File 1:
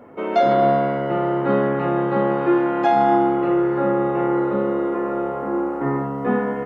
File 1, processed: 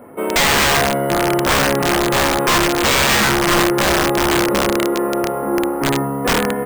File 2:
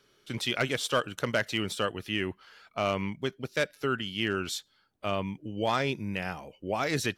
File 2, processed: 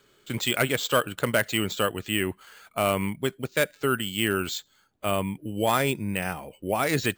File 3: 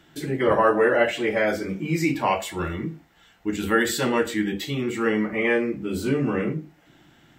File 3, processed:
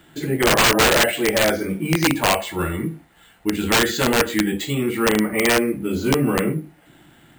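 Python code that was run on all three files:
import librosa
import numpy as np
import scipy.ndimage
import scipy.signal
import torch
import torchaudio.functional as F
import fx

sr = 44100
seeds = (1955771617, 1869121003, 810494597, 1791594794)

y = np.repeat(scipy.signal.resample_poly(x, 1, 4), 4)[:len(x)]
y = (np.mod(10.0 ** (14.0 / 20.0) * y + 1.0, 2.0) - 1.0) / 10.0 ** (14.0 / 20.0)
y = y * 10.0 ** (4.5 / 20.0)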